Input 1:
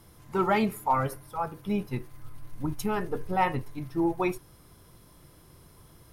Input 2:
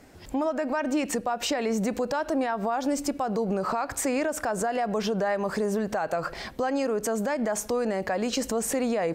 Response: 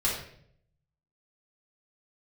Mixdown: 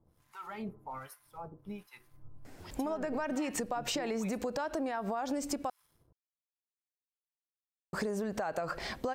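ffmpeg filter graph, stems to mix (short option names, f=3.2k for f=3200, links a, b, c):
-filter_complex "[0:a]alimiter=limit=-21dB:level=0:latency=1:release=35,aeval=exprs='sgn(val(0))*max(abs(val(0))-0.00106,0)':c=same,acrossover=split=920[a][b];[a]aeval=exprs='val(0)*(1-1/2+1/2*cos(2*PI*1.3*n/s))':c=same[c];[b]aeval=exprs='val(0)*(1-1/2-1/2*cos(2*PI*1.3*n/s))':c=same[d];[c][d]amix=inputs=2:normalize=0,volume=-7.5dB[e];[1:a]adelay=2450,volume=-2dB,asplit=3[f][g][h];[f]atrim=end=5.7,asetpts=PTS-STARTPTS,afade=t=out:st=5.696:d=0.004:c=hsin[i];[g]atrim=start=5.7:end=7.93,asetpts=PTS-STARTPTS,volume=0[j];[h]atrim=start=7.93,asetpts=PTS-STARTPTS,afade=t=in:d=0.004:c=hsin[k];[i][j][k]concat=n=3:v=0:a=1[l];[e][l]amix=inputs=2:normalize=0,acompressor=threshold=-31dB:ratio=6"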